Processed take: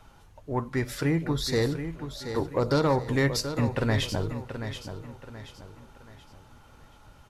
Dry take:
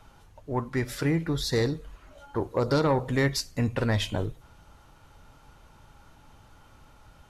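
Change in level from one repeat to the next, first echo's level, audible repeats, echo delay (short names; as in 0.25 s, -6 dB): -8.5 dB, -9.5 dB, 3, 0.729 s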